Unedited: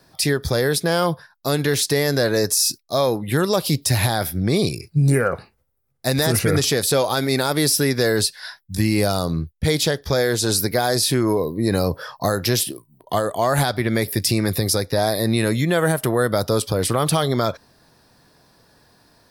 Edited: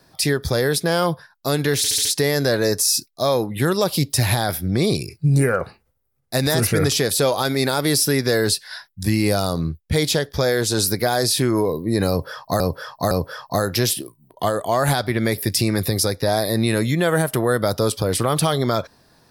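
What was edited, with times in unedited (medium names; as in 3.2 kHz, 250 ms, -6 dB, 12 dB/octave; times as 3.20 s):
1.77 s: stutter 0.07 s, 5 plays
11.81–12.32 s: loop, 3 plays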